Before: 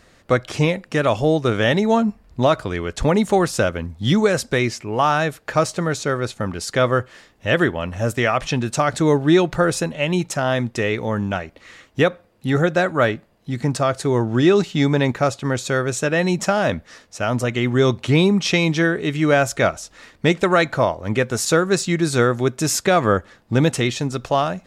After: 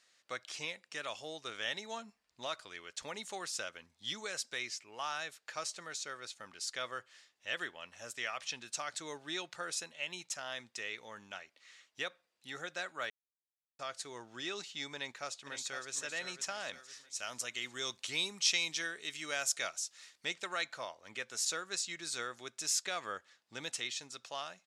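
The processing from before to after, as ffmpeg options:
-filter_complex "[0:a]asplit=2[s0][s1];[s1]afade=t=in:st=14.95:d=0.01,afade=t=out:st=15.92:d=0.01,aecho=0:1:510|1020|1530|2040|2550:0.375837|0.169127|0.0761071|0.0342482|0.0154117[s2];[s0][s2]amix=inputs=2:normalize=0,asettb=1/sr,asplit=3[s3][s4][s5];[s3]atrim=end=16.734[s6];[s4]atrim=start=16.73:end=20.25,asetpts=PTS-STARTPTS,afade=t=in:d=0.004:c=qsin,afade=t=out:st=3.516:d=0.004:c=qsin,highshelf=f=5200:g=11[s7];[s5]atrim=start=20.246[s8];[s6][s7]acrossfade=d=0.004:c1=hsin:c2=qsin[s9];[s9][s8]acrossfade=d=0.004:c1=qsin:c2=hsin,asplit=3[s10][s11][s12];[s10]atrim=end=13.1,asetpts=PTS-STARTPTS,afade=t=out:st=13.096:d=0.004:c=hsin[s13];[s11]atrim=start=13.1:end=13.79,asetpts=PTS-STARTPTS,volume=0[s14];[s12]atrim=start=13.79,asetpts=PTS-STARTPTS,afade=t=in:d=0.004:c=hsin[s15];[s13][s14][s15]concat=n=3:v=0:a=1,lowpass=6100,aderivative,volume=0.562"

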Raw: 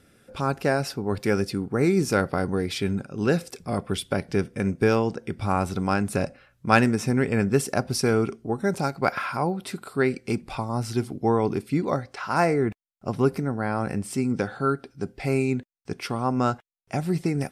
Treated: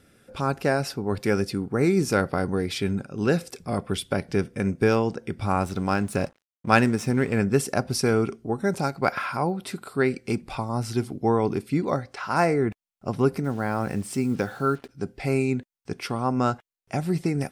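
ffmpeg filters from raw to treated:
-filter_complex "[0:a]asettb=1/sr,asplit=3[s0][s1][s2];[s0]atrim=end=5.634[s3];[s1]atrim=start=5.63:end=7.39,asetpts=PTS-STARTPTS,afade=t=in:d=0.004:c=qsin,afade=t=out:st=1.756:d=0.004:c=qsin,aeval=exprs='sgn(val(0))*max(abs(val(0))-0.00501,0)':c=same[s4];[s2]atrim=start=7.386[s5];[s3][s4]acrossfade=d=0.004:c1=hsin:c2=qsin[s6];[s6][s5]acrossfade=d=0.004:c1=qsin:c2=hsin,asettb=1/sr,asplit=3[s7][s8][s9];[s7]atrim=end=13.444[s10];[s8]atrim=start=13.44:end=14.89,asetpts=PTS-STARTPTS,afade=t=in:d=0.004:c=qsin,afade=t=out:st=1.446:d=0.004:c=qsin,acrusher=bits=7:mix=0:aa=0.5[s11];[s9]atrim=start=14.886[s12];[s10][s11]acrossfade=d=0.004:c1=hsin:c2=qsin[s13];[s13][s12]acrossfade=d=0.004:c1=qsin:c2=hsin"

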